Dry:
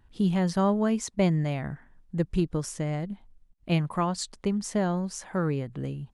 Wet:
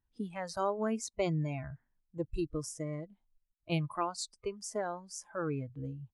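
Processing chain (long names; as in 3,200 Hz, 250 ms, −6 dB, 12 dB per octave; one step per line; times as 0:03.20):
noise reduction from a noise print of the clip's start 18 dB
level −5 dB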